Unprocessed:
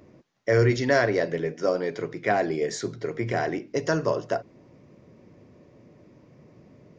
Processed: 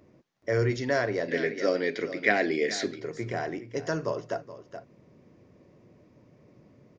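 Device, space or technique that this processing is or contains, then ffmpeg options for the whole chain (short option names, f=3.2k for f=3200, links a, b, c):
ducked delay: -filter_complex "[0:a]asplit=3[a][b][c];[b]adelay=423,volume=-4dB[d];[c]apad=whole_len=326711[e];[d][e]sidechaincompress=threshold=-35dB:ratio=4:attack=9:release=650[f];[a][f]amix=inputs=2:normalize=0,asettb=1/sr,asplit=3[g][h][i];[g]atrim=end=1.284[j];[h]atrim=start=1.28:end=3,asetpts=PTS-STARTPTS,afade=t=in:d=0.004:c=qsin,afade=t=out:st=1.716:d=0.004:c=qsin,equalizer=f=125:t=o:w=1:g=-9,equalizer=f=250:t=o:w=1:g=9,equalizer=f=500:t=o:w=1:g=3,equalizer=f=1k:t=o:w=1:g=-5,equalizer=f=2k:t=o:w=1:g=12,equalizer=f=4k:t=o:w=1:g=10[k];[i]atrim=start=2.996[l];[j][k]acrossfade=d=0.004:c1=hsin:c2=qsin[m];[m][l]acrossfade=d=0.004:c1=qsin:c2=hsin,volume=-5.5dB"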